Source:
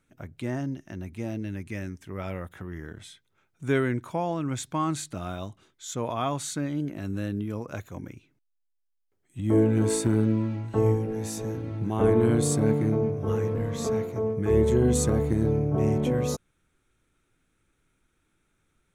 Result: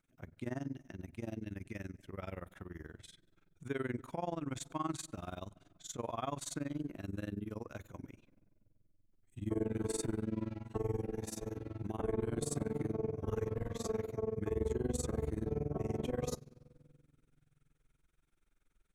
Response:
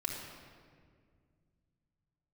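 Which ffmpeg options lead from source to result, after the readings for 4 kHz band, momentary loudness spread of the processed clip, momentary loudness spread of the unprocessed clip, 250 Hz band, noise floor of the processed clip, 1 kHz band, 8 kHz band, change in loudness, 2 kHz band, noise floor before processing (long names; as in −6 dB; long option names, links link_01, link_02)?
−10.5 dB, 13 LU, 16 LU, −13.0 dB, −76 dBFS, −10.5 dB, −11.0 dB, −13.0 dB, −12.0 dB, −74 dBFS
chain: -filter_complex "[0:a]asubboost=boost=3.5:cutoff=52,alimiter=limit=-19.5dB:level=0:latency=1:release=26,asplit=2[link_01][link_02];[1:a]atrim=start_sample=2205[link_03];[link_02][link_03]afir=irnorm=-1:irlink=0,volume=-19.5dB[link_04];[link_01][link_04]amix=inputs=2:normalize=0,tremolo=f=21:d=0.947,volume=-6dB"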